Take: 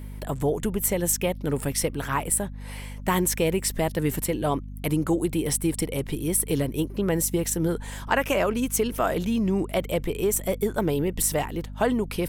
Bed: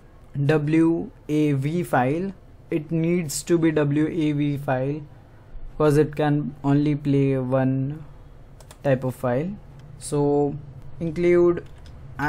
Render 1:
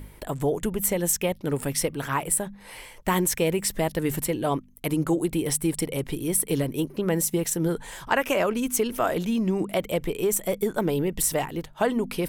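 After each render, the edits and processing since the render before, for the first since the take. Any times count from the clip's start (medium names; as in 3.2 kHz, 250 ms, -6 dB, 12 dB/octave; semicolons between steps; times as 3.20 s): de-hum 50 Hz, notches 5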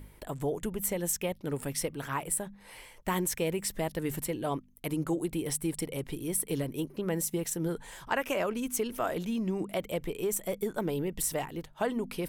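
trim -7 dB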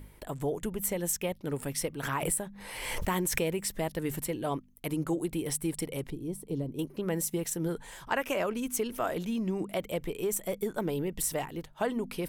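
2.03–3.43 s: swell ahead of each attack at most 39 dB/s; 6.10–6.79 s: FFT filter 250 Hz 0 dB, 960 Hz -7 dB, 1.6 kHz -19 dB, 4.4 kHz -11 dB, 11 kHz -17 dB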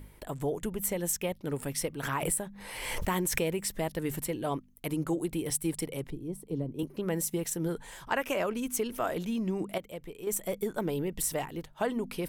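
5.50–6.83 s: three bands expanded up and down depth 40%; 9.78–10.27 s: gain -8.5 dB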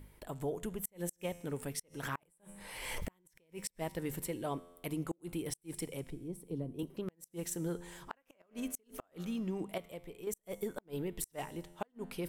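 feedback comb 87 Hz, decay 1.3 s, harmonics all, mix 50%; inverted gate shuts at -25 dBFS, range -37 dB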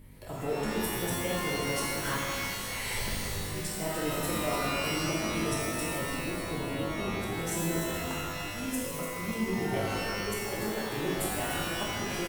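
frequency-shifting echo 295 ms, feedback 57%, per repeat -88 Hz, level -8.5 dB; pitch-shifted reverb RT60 1.6 s, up +12 st, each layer -2 dB, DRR -5.5 dB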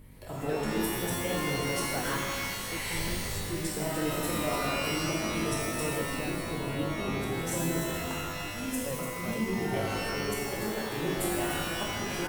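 add bed -18 dB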